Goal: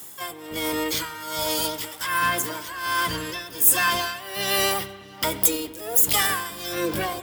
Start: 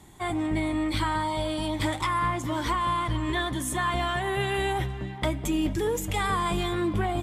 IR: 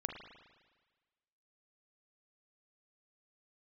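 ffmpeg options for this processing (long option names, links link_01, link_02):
-filter_complex "[0:a]tremolo=f=1.3:d=0.83,asplit=2[link_01][link_02];[link_02]asetrate=66075,aresample=44100,atempo=0.66742,volume=-3dB[link_03];[link_01][link_03]amix=inputs=2:normalize=0,aemphasis=mode=production:type=riaa,asplit=2[link_04][link_05];[1:a]atrim=start_sample=2205,lowshelf=frequency=360:gain=5.5[link_06];[link_05][link_06]afir=irnorm=-1:irlink=0,volume=-5.5dB[link_07];[link_04][link_07]amix=inputs=2:normalize=0,volume=-1dB"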